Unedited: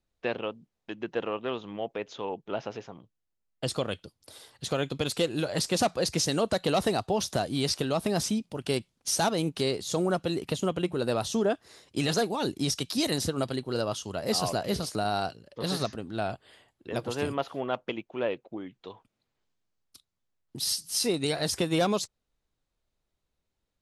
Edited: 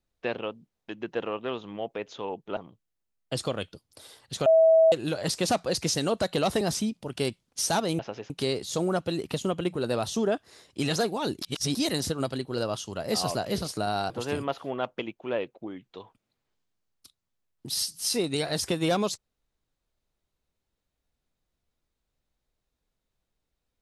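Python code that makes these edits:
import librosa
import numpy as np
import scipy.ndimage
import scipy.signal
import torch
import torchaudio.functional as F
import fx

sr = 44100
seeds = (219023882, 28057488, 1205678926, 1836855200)

y = fx.edit(x, sr, fx.move(start_s=2.57, length_s=0.31, to_s=9.48),
    fx.bleep(start_s=4.77, length_s=0.46, hz=648.0, db=-14.5),
    fx.cut(start_s=6.92, length_s=1.18),
    fx.reverse_span(start_s=12.6, length_s=0.33),
    fx.cut(start_s=15.28, length_s=1.72), tone=tone)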